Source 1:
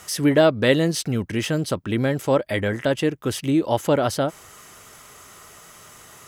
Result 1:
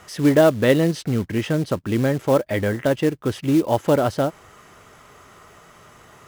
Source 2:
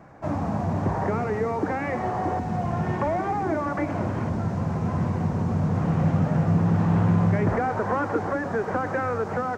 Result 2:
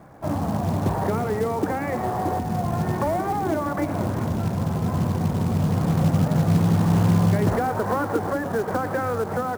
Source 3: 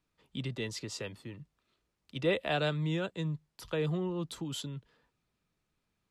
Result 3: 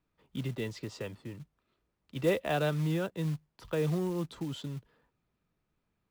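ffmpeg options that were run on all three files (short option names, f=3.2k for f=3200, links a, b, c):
-af "lowpass=f=1.7k:p=1,acrusher=bits=5:mode=log:mix=0:aa=0.000001,volume=2dB"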